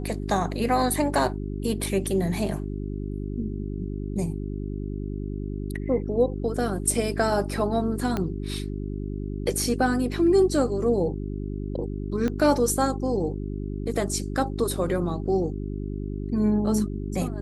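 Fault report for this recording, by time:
hum 50 Hz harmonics 8 -31 dBFS
8.17 s: pop -14 dBFS
12.28 s: pop -16 dBFS

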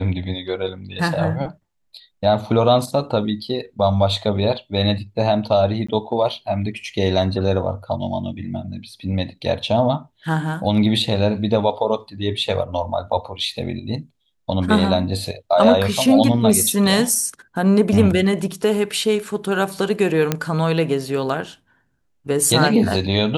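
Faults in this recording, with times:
5.87–5.88 s: dropout 15 ms
20.32 s: pop -4 dBFS

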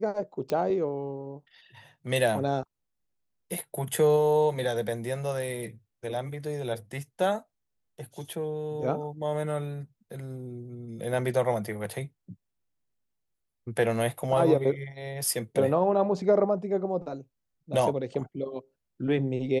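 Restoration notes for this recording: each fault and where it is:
0.50 s: pop -18 dBFS

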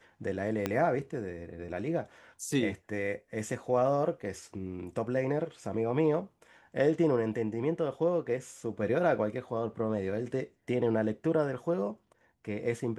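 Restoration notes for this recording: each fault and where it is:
0.66 s: pop -15 dBFS

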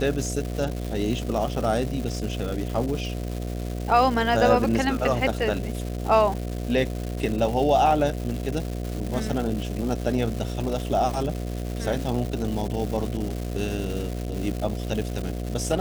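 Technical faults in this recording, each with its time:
buzz 60 Hz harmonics 12 -30 dBFS
crackle 450 per s -30 dBFS

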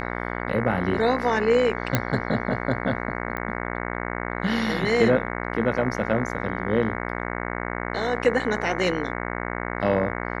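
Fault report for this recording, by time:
buzz 60 Hz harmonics 37 -30 dBFS
1.95 s: pop -5 dBFS
3.37 s: pop -17 dBFS

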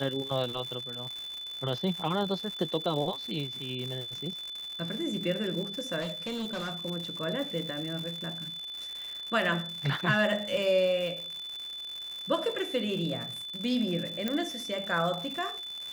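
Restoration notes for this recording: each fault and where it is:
crackle 200 per s -35 dBFS
whine 3.5 kHz -37 dBFS
6.00–6.85 s: clipped -30.5 dBFS
10.57 s: dropout 2.1 ms
14.28 s: pop -16 dBFS

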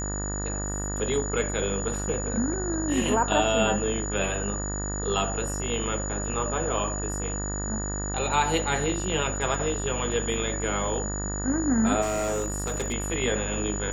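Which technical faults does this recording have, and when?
buzz 50 Hz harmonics 38 -32 dBFS
whine 6.9 kHz -33 dBFS
12.01–12.94 s: clipped -24 dBFS

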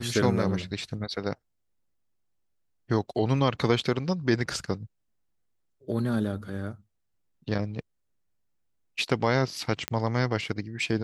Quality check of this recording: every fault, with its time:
9.88 s: pop -11 dBFS

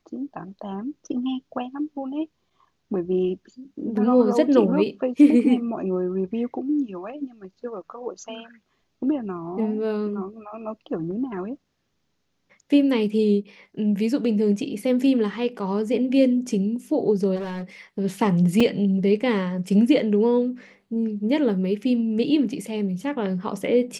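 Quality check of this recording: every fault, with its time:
17.35–17.63 s: clipped -26.5 dBFS
18.60 s: dropout 4 ms

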